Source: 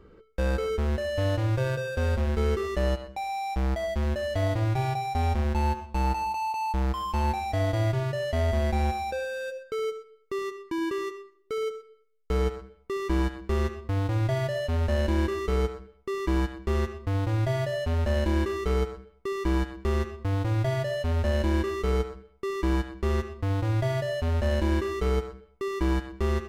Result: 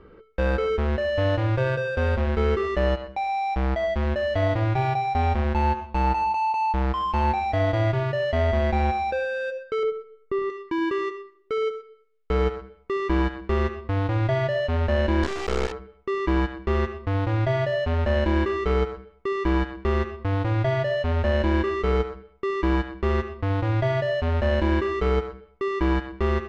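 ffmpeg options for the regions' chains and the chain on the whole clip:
-filter_complex "[0:a]asettb=1/sr,asplit=3[a][b][c];[a]atrim=end=9.834[d];[b]atrim=start=9.83:end=10.5,asetpts=PTS-STARTPTS,afade=t=in:d=0.004:c=qsin,afade=t=out:st=0.666:d=0.004:c=qsin,lowpass=f=1.4k:p=1,lowshelf=f=190:g=9[e];[c]atrim=start=10.496[f];[d][e]acrossfade=d=0.004:c1=hsin:c2=qsin[g];[g][f]acrossfade=d=0.004:c1=qsin:c2=hsin,asettb=1/sr,asplit=3[h][i][j];[h]atrim=end=15.234[k];[i]atrim=start=15.23:end=15.72,asetpts=PTS-STARTPTS,afade=t=in:d=0.004:c=qsin,afade=t=out:st=0.486:d=0.004:c=qsin,acrusher=bits=3:dc=4:mix=0:aa=0.000001,equalizer=f=7.2k:w=0.96:g=12[l];[j]atrim=start=15.716[m];[k][l]acrossfade=d=0.004:c1=hsin:c2=qsin[n];[n][m]acrossfade=d=0.004:c1=qsin:c2=hsin,lowpass=3k,lowshelf=f=350:g=-5,volume=6.5dB"

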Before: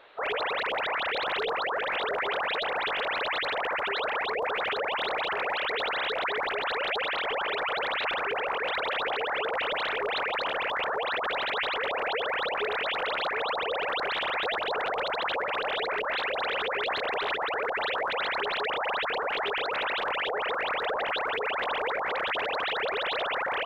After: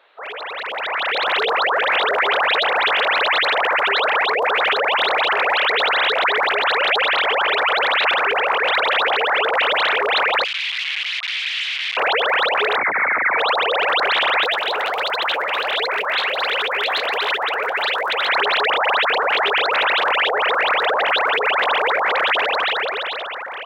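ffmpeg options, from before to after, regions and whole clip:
-filter_complex "[0:a]asettb=1/sr,asplit=3[a][b][c];[a]atrim=end=10.444[d];[b]atrim=start=10.44:end=11.97,asetpts=PTS-STARTPTS,afade=t=in:d=0.004:c=qsin,afade=t=out:st=1.526:d=0.004:c=qsin,aeval=exprs='(mod(17.8*val(0)+1,2)-1)/17.8':c=same,asuperpass=centerf=2700:order=4:qfactor=1.7[e];[c]atrim=start=11.966[f];[d][e]acrossfade=d=0.004:c1=hsin:c2=qsin[g];[g][f]acrossfade=d=0.004:c1=qsin:c2=hsin,asettb=1/sr,asplit=3[h][i][j];[h]atrim=end=12.774[k];[i]atrim=start=12.77:end=13.38,asetpts=PTS-STARTPTS,afade=t=in:d=0.004:c=qsin,afade=t=out:st=0.606:d=0.004:c=qsin,highpass=160,lowpass=f=2.3k:t=q:w=0.5098,lowpass=f=2.3k:t=q:w=0.6013,lowpass=f=2.3k:t=q:w=0.9,lowpass=f=2.3k:t=q:w=2.563,afreqshift=-2700[l];[j]atrim=start=13.376[m];[k][l]acrossfade=d=0.004:c1=hsin:c2=qsin[n];[n][m]acrossfade=d=0.004:c1=qsin:c2=hsin,asettb=1/sr,asplit=3[o][p][q];[o]atrim=end=14.444[r];[p]atrim=start=14.44:end=18.29,asetpts=PTS-STARTPTS,afade=t=in:d=0.004:c=qsin,afade=t=out:st=3.846:d=0.004:c=qsin,aemphasis=mode=production:type=50kf,flanger=delay=1.9:depth=7.6:regen=68:speed=1.4:shape=sinusoidal[s];[q]atrim=start=18.286[t];[r][s]acrossfade=d=0.004:c1=hsin:c2=qsin[u];[u][t]acrossfade=d=0.004:c1=qsin:c2=hsin,highpass=f=580:p=1,dynaudnorm=f=120:g=17:m=13dB"

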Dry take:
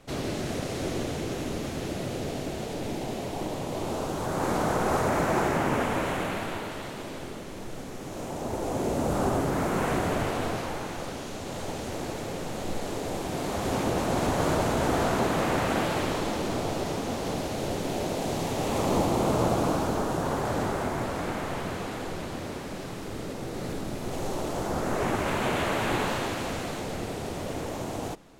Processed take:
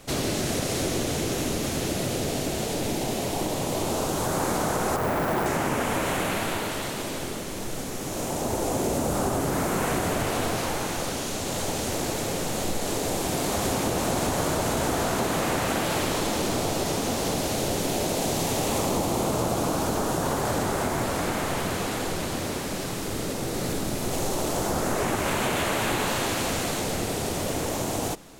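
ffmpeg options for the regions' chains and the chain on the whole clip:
-filter_complex "[0:a]asettb=1/sr,asplit=3[a][b][c];[a]atrim=end=4.964[d];[b]atrim=start=4.96:end=5.46,asetpts=PTS-STARTPTS,afade=t=in:d=0.004:c=qsin,afade=t=out:st=0.496:d=0.004:c=qsin,lowpass=2k,asoftclip=type=hard:threshold=-20dB,acrusher=bits=5:mode=log:mix=0:aa=0.000001[e];[c]atrim=start=5.456[f];[d][e]acrossfade=d=0.004:c1=hsin:c2=qsin[g];[g][f]acrossfade=d=0.004:c1=qsin:c2=hsin,highshelf=f=4.8k:g=11,acompressor=threshold=-27dB:ratio=6,volume=5dB"

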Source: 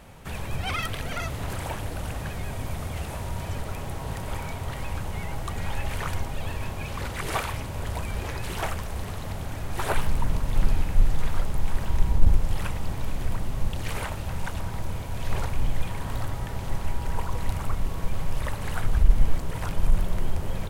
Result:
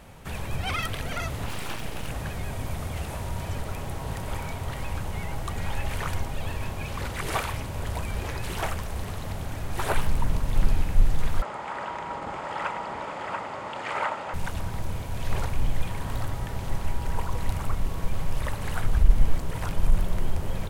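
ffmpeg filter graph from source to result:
-filter_complex "[0:a]asettb=1/sr,asplit=3[a][b][c];[a]atrim=end=1.464[d];[b]atrim=start=1.46:end=2.1,asetpts=PTS-STARTPTS,afade=t=in:d=0.004:c=qsin,afade=t=out:st=0.636:d=0.004:c=qsin,equalizer=f=2.7k:w=2:g=7,aeval=exprs='abs(val(0))':c=same[e];[c]atrim=start=2.096[f];[d][e]acrossfade=d=0.004:c1=hsin:c2=qsin[g];[g][f]acrossfade=d=0.004:c1=qsin:c2=hsin,asettb=1/sr,asplit=3[h][i][j];[h]atrim=end=11.424[k];[i]atrim=start=11.42:end=14.34,asetpts=PTS-STARTPTS,afade=t=in:d=0.004:c=qsin,afade=t=out:st=2.916:d=0.004:c=qsin,highpass=330,equalizer=f=590:t=q:w=4:g=6,equalizer=f=890:t=q:w=4:g=9,equalizer=f=1.3k:t=q:w=4:g=10,equalizer=f=2k:t=q:w=4:g=5,equalizer=f=4k:t=q:w=4:g=-5,equalizer=f=5.8k:t=q:w=4:g=-9,lowpass=f=6.8k:w=0.5412,lowpass=f=6.8k:w=1.3066,aecho=1:1:684:0.562,atrim=end_sample=128772[l];[j]atrim=start=14.336[m];[k][l]acrossfade=d=0.004:c1=hsin:c2=qsin[n];[n][m]acrossfade=d=0.004:c1=qsin:c2=hsin"

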